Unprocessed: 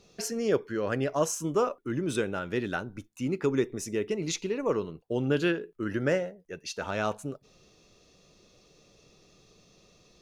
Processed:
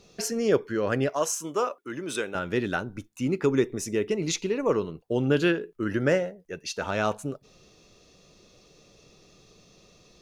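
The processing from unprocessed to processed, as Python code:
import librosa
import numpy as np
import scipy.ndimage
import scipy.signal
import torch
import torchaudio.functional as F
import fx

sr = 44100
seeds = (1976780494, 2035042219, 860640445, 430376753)

y = fx.highpass(x, sr, hz=670.0, slope=6, at=(1.09, 2.35))
y = y * 10.0 ** (3.5 / 20.0)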